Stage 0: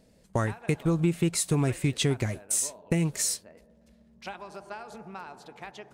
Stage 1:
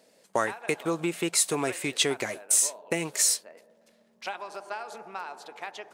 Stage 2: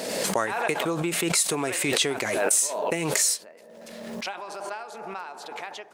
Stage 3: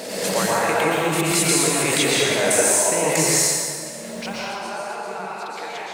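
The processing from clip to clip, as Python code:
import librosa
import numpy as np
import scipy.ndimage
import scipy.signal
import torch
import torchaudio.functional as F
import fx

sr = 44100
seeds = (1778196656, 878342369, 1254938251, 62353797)

y1 = scipy.signal.sosfilt(scipy.signal.butter(2, 460.0, 'highpass', fs=sr, output='sos'), x)
y1 = y1 * librosa.db_to_amplitude(5.0)
y2 = fx.pre_swell(y1, sr, db_per_s=30.0)
y3 = fx.rev_plate(y2, sr, seeds[0], rt60_s=2.0, hf_ratio=0.8, predelay_ms=105, drr_db=-5.5)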